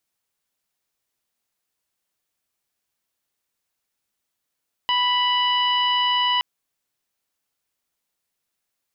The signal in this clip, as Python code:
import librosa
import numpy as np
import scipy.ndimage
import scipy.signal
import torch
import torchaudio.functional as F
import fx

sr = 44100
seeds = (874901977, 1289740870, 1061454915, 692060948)

y = fx.additive_steady(sr, length_s=1.52, hz=987.0, level_db=-21, upper_db=(-7.0, 0.5, -17, -18))